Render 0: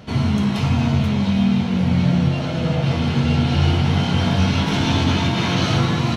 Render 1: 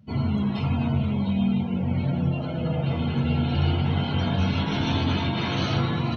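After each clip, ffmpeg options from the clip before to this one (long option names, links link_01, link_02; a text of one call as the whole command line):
ffmpeg -i in.wav -af "afftdn=noise_reduction=23:noise_floor=-31,bandreject=frequency=60:width_type=h:width=6,bandreject=frequency=120:width_type=h:width=6,bandreject=frequency=180:width_type=h:width=6,volume=-5.5dB" out.wav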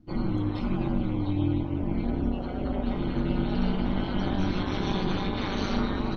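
ffmpeg -i in.wav -af "equalizer=frequency=2800:width_type=o:width=0.46:gain=-7.5,aeval=exprs='val(0)*sin(2*PI*99*n/s)':channel_layout=same" out.wav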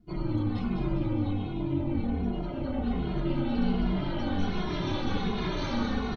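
ffmpeg -i in.wav -filter_complex "[0:a]asplit=2[link_01][link_02];[link_02]aecho=0:1:201|402|603|804|1005|1206:0.531|0.271|0.138|0.0704|0.0359|0.0183[link_03];[link_01][link_03]amix=inputs=2:normalize=0,asplit=2[link_04][link_05];[link_05]adelay=2.4,afreqshift=-1.3[link_06];[link_04][link_06]amix=inputs=2:normalize=1" out.wav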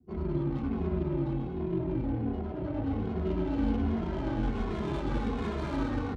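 ffmpeg -i in.wav -af "afreqshift=38,adynamicsmooth=sensitivity=5:basefreq=790,volume=-2dB" out.wav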